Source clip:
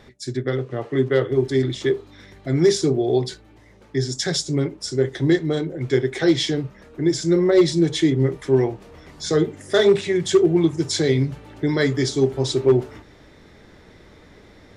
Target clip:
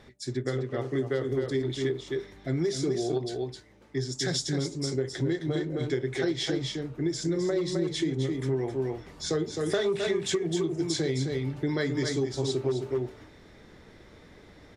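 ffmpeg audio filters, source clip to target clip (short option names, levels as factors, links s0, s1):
-filter_complex "[0:a]asettb=1/sr,asplit=3[s0][s1][s2];[s0]atrim=end=0.804[s3];[s1]atrim=start=0.8:end=1.36,asetpts=PTS-STARTPTS,afade=t=in:d=0.004:c=qsin,afade=t=out:st=0.556:d=0.004:c=qsin,highshelf=f=4200:t=q:w=1.5:g=6.5[s4];[s2]atrim=start=1.356[s5];[s3][s4]acrossfade=d=0.004:c1=hsin:c2=qsin[s6];[s6][s5]acrossfade=d=0.004:c1=qsin:c2=hsin,asettb=1/sr,asplit=3[s7][s8][s9];[s7]atrim=end=9.664[s10];[s8]atrim=start=9.66:end=10.36,asetpts=PTS-STARTPTS,afade=t=in:d=0.004:c=qsin,afade=t=out:st=0.696:d=0.004:c=qsin,acontrast=68[s11];[s9]atrim=start=10.356[s12];[s10][s11]acrossfade=d=0.004:c1=hsin:c2=qsin[s13];[s13][s12]acrossfade=d=0.004:c1=qsin:c2=hsin,aecho=1:1:261:0.501,asettb=1/sr,asplit=3[s14][s15][s16];[s14]atrim=end=3.084[s17];[s15]atrim=start=3.08:end=4.21,asetpts=PTS-STARTPTS,afade=t=in:d=0.004:c=qsin,afade=t=out:st=1.126:d=0.004:c=qsin,aeval=exprs='0.473*(cos(1*acos(clip(val(0)/0.473,-1,1)))-cos(1*PI/2))+0.0376*(cos(3*acos(clip(val(0)/0.473,-1,1)))-cos(3*PI/2))':c=same[s18];[s16]atrim=start=4.206[s19];[s17][s18]acrossfade=d=0.004:c1=hsin:c2=qsin[s20];[s20][s19]acrossfade=d=0.004:c1=qsin:c2=hsin,acompressor=threshold=0.112:ratio=12,volume=0.562" -ar 44100 -c:a ac3 -b:a 96k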